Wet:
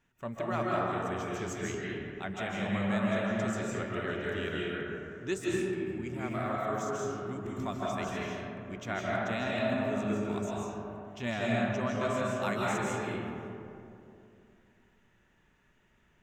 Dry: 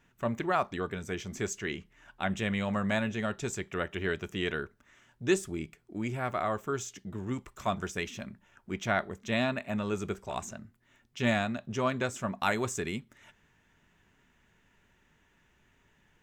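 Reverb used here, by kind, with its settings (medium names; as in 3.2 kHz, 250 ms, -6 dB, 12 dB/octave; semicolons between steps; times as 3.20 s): algorithmic reverb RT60 2.8 s, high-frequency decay 0.35×, pre-delay 115 ms, DRR -5.5 dB; trim -7.5 dB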